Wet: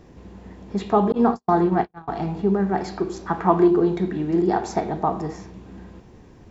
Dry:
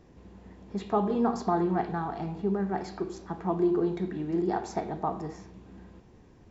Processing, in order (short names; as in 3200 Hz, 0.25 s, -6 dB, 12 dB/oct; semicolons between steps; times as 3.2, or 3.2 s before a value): 1.12–2.08 gate -27 dBFS, range -53 dB; 3.26–3.68 bell 1400 Hz +9.5 dB 1.8 oct; gain +8 dB